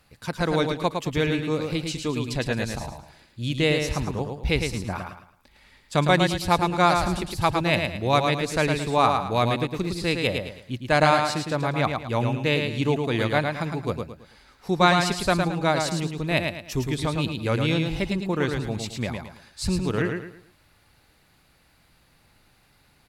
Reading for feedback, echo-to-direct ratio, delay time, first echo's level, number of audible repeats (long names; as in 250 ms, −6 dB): 33%, −4.5 dB, 109 ms, −5.0 dB, 4